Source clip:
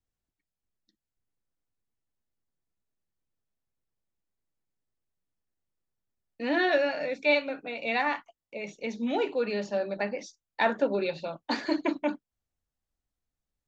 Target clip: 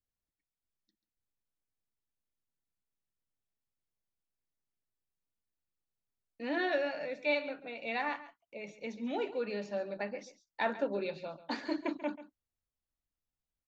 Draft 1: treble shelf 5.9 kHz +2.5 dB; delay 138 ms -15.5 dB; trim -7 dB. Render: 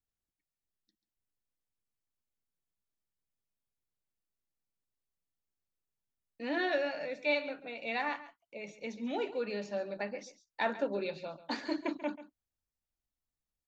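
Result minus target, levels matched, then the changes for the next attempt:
8 kHz band +3.0 dB
change: treble shelf 5.9 kHz -4 dB

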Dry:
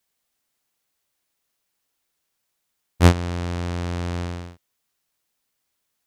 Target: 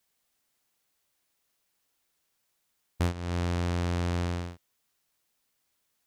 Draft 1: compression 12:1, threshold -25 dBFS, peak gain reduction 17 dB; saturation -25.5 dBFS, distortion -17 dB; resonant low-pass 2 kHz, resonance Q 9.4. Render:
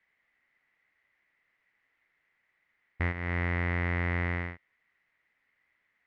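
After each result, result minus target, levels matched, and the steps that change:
saturation: distortion +16 dB; 2 kHz band +10.0 dB
change: saturation -15 dBFS, distortion -33 dB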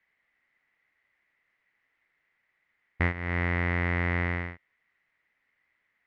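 2 kHz band +10.5 dB
remove: resonant low-pass 2 kHz, resonance Q 9.4

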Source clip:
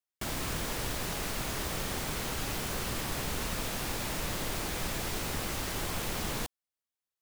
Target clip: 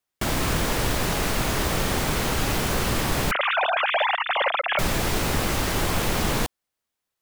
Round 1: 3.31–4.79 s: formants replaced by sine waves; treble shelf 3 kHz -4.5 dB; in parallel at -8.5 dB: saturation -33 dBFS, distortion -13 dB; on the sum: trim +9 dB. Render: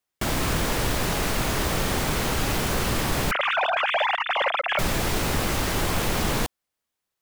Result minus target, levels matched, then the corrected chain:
saturation: distortion +14 dB
3.31–4.79 s: formants replaced by sine waves; treble shelf 3 kHz -4.5 dB; in parallel at -8.5 dB: saturation -23 dBFS, distortion -27 dB; on the sum: trim +9 dB

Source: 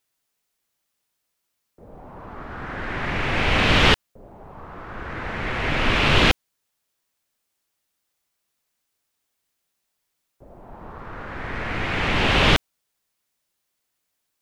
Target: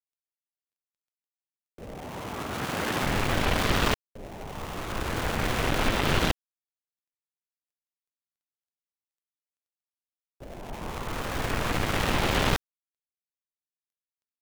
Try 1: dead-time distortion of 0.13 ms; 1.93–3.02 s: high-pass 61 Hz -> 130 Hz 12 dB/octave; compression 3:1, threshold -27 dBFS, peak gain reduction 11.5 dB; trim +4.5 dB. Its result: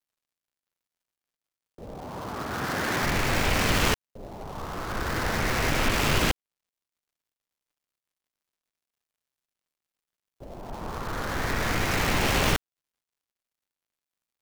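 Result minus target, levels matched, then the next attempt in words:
dead-time distortion: distortion -4 dB
dead-time distortion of 0.28 ms; 1.93–3.02 s: high-pass 61 Hz -> 130 Hz 12 dB/octave; compression 3:1, threshold -27 dBFS, peak gain reduction 11 dB; trim +4.5 dB

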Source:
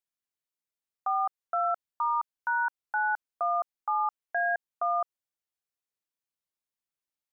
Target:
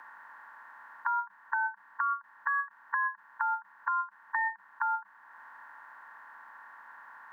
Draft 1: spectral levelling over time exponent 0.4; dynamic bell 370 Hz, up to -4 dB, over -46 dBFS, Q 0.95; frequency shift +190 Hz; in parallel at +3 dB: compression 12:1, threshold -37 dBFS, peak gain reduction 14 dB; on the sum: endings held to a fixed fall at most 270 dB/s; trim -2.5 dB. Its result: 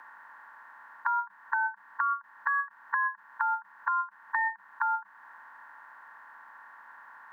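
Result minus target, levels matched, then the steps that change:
compression: peak gain reduction -10 dB
change: compression 12:1, threshold -48 dBFS, peak gain reduction 24 dB

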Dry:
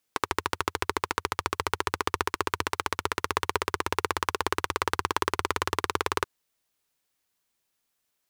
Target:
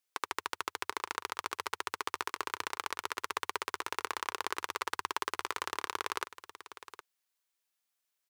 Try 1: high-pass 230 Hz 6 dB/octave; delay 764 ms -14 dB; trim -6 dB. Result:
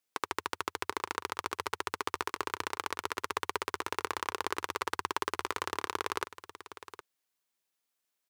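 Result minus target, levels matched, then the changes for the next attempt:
250 Hz band +5.0 dB
change: high-pass 760 Hz 6 dB/octave

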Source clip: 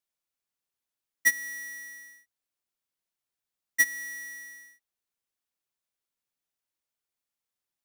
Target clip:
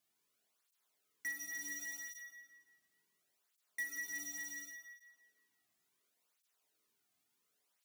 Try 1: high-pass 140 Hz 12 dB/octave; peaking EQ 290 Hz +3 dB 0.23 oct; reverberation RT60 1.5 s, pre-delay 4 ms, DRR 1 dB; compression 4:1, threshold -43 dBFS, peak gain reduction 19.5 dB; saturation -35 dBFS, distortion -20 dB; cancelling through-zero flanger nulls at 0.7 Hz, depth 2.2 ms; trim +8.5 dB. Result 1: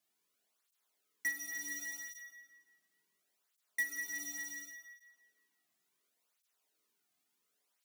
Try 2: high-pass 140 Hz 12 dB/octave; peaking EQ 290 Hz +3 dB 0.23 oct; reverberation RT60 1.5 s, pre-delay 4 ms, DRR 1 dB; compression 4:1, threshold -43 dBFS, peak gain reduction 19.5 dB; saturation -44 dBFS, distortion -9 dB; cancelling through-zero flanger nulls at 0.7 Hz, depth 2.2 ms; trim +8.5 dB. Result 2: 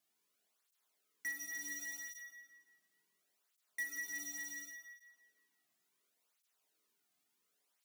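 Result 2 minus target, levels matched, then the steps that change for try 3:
125 Hz band -3.0 dB
remove: high-pass 140 Hz 12 dB/octave

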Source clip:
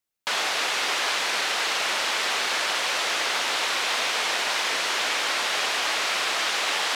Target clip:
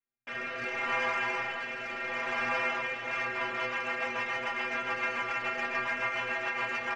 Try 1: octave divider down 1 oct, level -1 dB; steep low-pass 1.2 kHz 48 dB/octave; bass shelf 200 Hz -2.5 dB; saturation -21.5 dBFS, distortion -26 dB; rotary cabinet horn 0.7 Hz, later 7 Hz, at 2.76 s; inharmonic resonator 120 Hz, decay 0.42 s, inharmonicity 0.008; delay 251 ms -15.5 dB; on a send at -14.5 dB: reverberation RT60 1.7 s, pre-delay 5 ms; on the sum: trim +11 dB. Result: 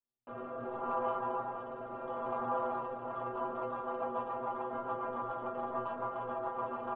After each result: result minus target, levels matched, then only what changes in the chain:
2 kHz band -16.5 dB; echo 89 ms late
change: steep low-pass 2.6 kHz 48 dB/octave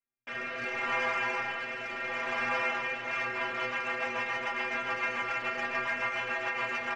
echo 89 ms late
change: delay 162 ms -15.5 dB

